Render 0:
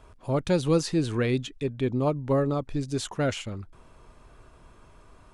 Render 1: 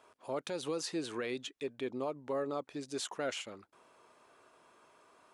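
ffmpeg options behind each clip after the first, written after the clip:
-af "highpass=390,alimiter=limit=-22.5dB:level=0:latency=1:release=83,volume=-4.5dB"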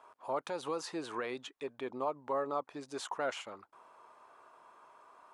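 -af "equalizer=f=980:t=o:w=1.5:g=13.5,volume=-5.5dB"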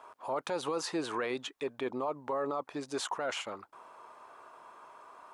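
-af "alimiter=level_in=7dB:limit=-24dB:level=0:latency=1:release=10,volume=-7dB,volume=6dB"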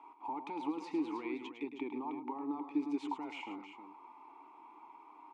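-filter_complex "[0:a]acompressor=threshold=-36dB:ratio=2.5,asplit=3[a][b][c];[a]bandpass=f=300:t=q:w=8,volume=0dB[d];[b]bandpass=f=870:t=q:w=8,volume=-6dB[e];[c]bandpass=f=2.24k:t=q:w=8,volume=-9dB[f];[d][e][f]amix=inputs=3:normalize=0,asplit=2[g][h];[h]aecho=0:1:106|315:0.335|0.335[i];[g][i]amix=inputs=2:normalize=0,volume=10dB"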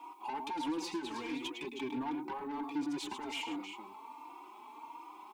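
-filter_complex "[0:a]acrossover=split=1500[a][b];[b]aexciter=amount=1.7:drive=9.6:freq=2.9k[c];[a][c]amix=inputs=2:normalize=0,asoftclip=type=tanh:threshold=-39.5dB,asplit=2[d][e];[e]adelay=3.7,afreqshift=1.4[f];[d][f]amix=inputs=2:normalize=1,volume=8.5dB"

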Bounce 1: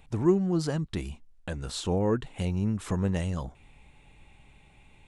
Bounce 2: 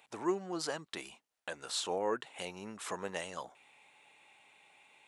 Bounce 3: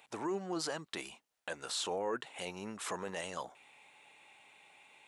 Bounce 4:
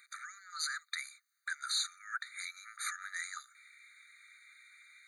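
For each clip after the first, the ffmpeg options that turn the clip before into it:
-af "highpass=610"
-af "alimiter=level_in=5dB:limit=-24dB:level=0:latency=1:release=10,volume=-5dB,volume=2dB"
-af "afftfilt=real='re*eq(mod(floor(b*sr/1024/1200),2),1)':imag='im*eq(mod(floor(b*sr/1024/1200),2),1)':win_size=1024:overlap=0.75,volume=6.5dB"

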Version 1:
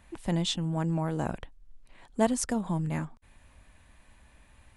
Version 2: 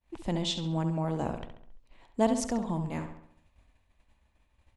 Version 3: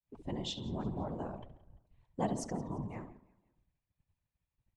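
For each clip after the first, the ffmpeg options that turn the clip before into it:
-filter_complex "[0:a]agate=range=-33dB:threshold=-47dB:ratio=3:detection=peak,equalizer=f=160:t=o:w=0.67:g=-4,equalizer=f=1.6k:t=o:w=0.67:g=-6,equalizer=f=10k:t=o:w=0.67:g=-10,asplit=2[a][b];[b]adelay=68,lowpass=f=4.7k:p=1,volume=-8dB,asplit=2[c][d];[d]adelay=68,lowpass=f=4.7k:p=1,volume=0.51,asplit=2[e][f];[f]adelay=68,lowpass=f=4.7k:p=1,volume=0.51,asplit=2[g][h];[h]adelay=68,lowpass=f=4.7k:p=1,volume=0.51,asplit=2[i][j];[j]adelay=68,lowpass=f=4.7k:p=1,volume=0.51,asplit=2[k][l];[l]adelay=68,lowpass=f=4.7k:p=1,volume=0.51[m];[c][e][g][i][k][m]amix=inputs=6:normalize=0[n];[a][n]amix=inputs=2:normalize=0"
-af "afftdn=nr=13:nf=-45,aecho=1:1:171|342|513:0.0841|0.037|0.0163,afftfilt=real='hypot(re,im)*cos(2*PI*random(0))':imag='hypot(re,im)*sin(2*PI*random(1))':win_size=512:overlap=0.75,volume=-2dB"

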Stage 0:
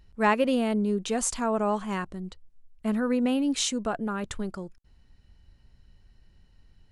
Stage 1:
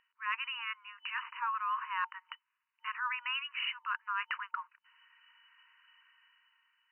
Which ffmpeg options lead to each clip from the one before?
-af "dynaudnorm=f=200:g=9:m=11.5dB,afftfilt=real='re*between(b*sr/4096,910,3000)':imag='im*between(b*sr/4096,910,3000)':win_size=4096:overlap=0.75,areverse,acompressor=threshold=-35dB:ratio=4,areverse,volume=1.5dB"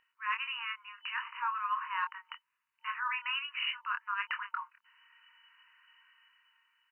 -filter_complex "[0:a]asplit=2[a][b];[b]adelay=25,volume=-5.5dB[c];[a][c]amix=inputs=2:normalize=0"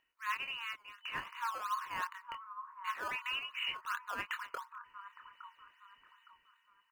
-filter_complex "[0:a]acrossover=split=1200|1400[a][b][c];[a]aecho=1:1:863|1726|2589|3452:0.531|0.17|0.0544|0.0174[d];[b]acrusher=samples=16:mix=1:aa=0.000001:lfo=1:lforange=16:lforate=2.7[e];[d][e][c]amix=inputs=3:normalize=0,volume=-2.5dB"

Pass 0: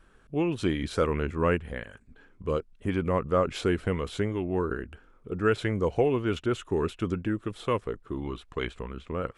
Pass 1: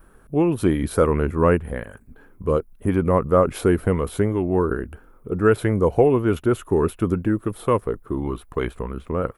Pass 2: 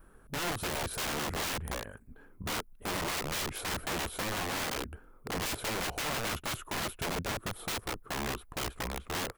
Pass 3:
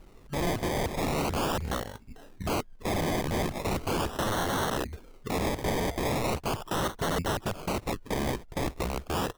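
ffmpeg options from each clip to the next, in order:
-af "firequalizer=gain_entry='entry(980,0);entry(1700,-5);entry(3000,-11);entry(7500,-6);entry(11000,13)':delay=0.05:min_phase=1,volume=8dB"
-af "afftfilt=real='re*lt(hypot(re,im),0.891)':imag='im*lt(hypot(re,im),0.891)':win_size=1024:overlap=0.75,aeval=exprs='(mod(14.1*val(0)+1,2)-1)/14.1':c=same,volume=-6dB"
-af "acrusher=samples=25:mix=1:aa=0.000001:lfo=1:lforange=15:lforate=0.39,volume=5.5dB"

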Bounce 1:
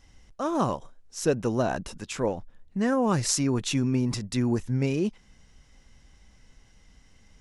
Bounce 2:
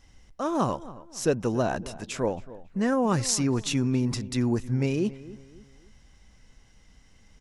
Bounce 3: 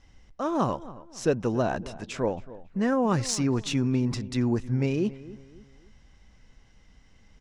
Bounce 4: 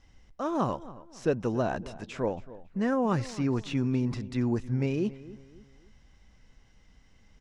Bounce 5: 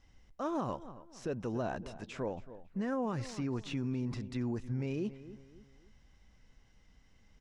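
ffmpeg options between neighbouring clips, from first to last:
-filter_complex "[0:a]asplit=2[a][b];[b]adelay=275,lowpass=f=1.9k:p=1,volume=-17dB,asplit=2[c][d];[d]adelay=275,lowpass=f=1.9k:p=1,volume=0.39,asplit=2[e][f];[f]adelay=275,lowpass=f=1.9k:p=1,volume=0.39[g];[a][c][e][g]amix=inputs=4:normalize=0"
-af "adynamicsmooth=sensitivity=1:basefreq=6.7k"
-filter_complex "[0:a]acrossover=split=3100[a][b];[b]acompressor=threshold=-45dB:ratio=4:attack=1:release=60[c];[a][c]amix=inputs=2:normalize=0,volume=-2.5dB"
-af "alimiter=limit=-22.5dB:level=0:latency=1:release=95,volume=-4.5dB"

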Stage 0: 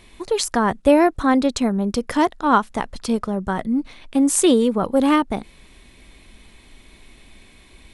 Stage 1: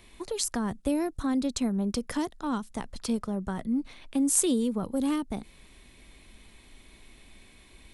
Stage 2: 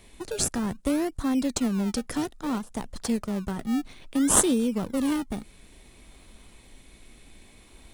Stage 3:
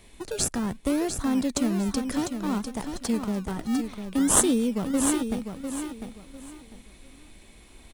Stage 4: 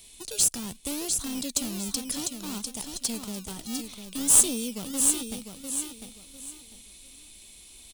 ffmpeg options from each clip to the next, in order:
-filter_complex "[0:a]highshelf=f=10k:g=5.5,acrossover=split=290|4100[a][b][c];[b]acompressor=threshold=-28dB:ratio=6[d];[a][d][c]amix=inputs=3:normalize=0,volume=-6dB"
-filter_complex "[0:a]equalizer=f=7.9k:w=1:g=6,asplit=2[a][b];[b]acrusher=samples=29:mix=1:aa=0.000001:lfo=1:lforange=29:lforate=0.6,volume=-5dB[c];[a][c]amix=inputs=2:normalize=0,volume=-1.5dB"
-af "aecho=1:1:700|1400|2100:0.422|0.11|0.0285"
-af "aeval=exprs='clip(val(0),-1,0.0668)':c=same,aexciter=amount=2.6:drive=9.7:freq=2.6k,volume=-8.5dB"

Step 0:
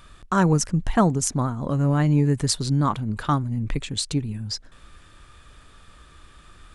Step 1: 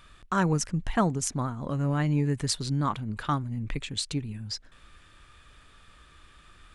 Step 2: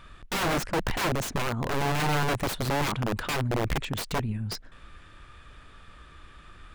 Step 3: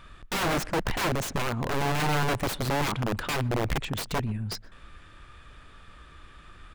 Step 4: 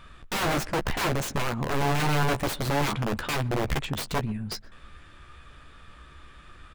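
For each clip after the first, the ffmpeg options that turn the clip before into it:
-af "equalizer=f=2.4k:t=o:w=1.7:g=5,volume=-6.5dB"
-af "aeval=exprs='0.335*(cos(1*acos(clip(val(0)/0.335,-1,1)))-cos(1*PI/2))+0.00944*(cos(8*acos(clip(val(0)/0.335,-1,1)))-cos(8*PI/2))':c=same,aeval=exprs='(mod(20*val(0)+1,2)-1)/20':c=same,highshelf=f=3.5k:g=-10,volume=6dB"
-filter_complex "[0:a]asplit=2[a][b];[b]adelay=123,lowpass=f=2.1k:p=1,volume=-22.5dB,asplit=2[c][d];[d]adelay=123,lowpass=f=2.1k:p=1,volume=0.24[e];[a][c][e]amix=inputs=3:normalize=0"
-filter_complex "[0:a]asplit=2[a][b];[b]adelay=14,volume=-8.5dB[c];[a][c]amix=inputs=2:normalize=0"

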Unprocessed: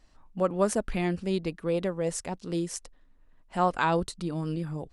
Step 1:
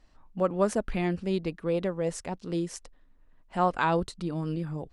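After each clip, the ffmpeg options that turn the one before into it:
-af "highshelf=f=6.9k:g=-9.5"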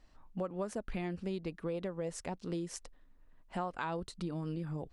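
-af "acompressor=threshold=-32dB:ratio=6,volume=-2dB"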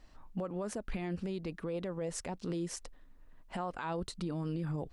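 -af "alimiter=level_in=9dB:limit=-24dB:level=0:latency=1:release=25,volume=-9dB,volume=4.5dB"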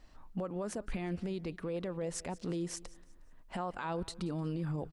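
-af "aecho=1:1:180|360|540:0.0944|0.034|0.0122"

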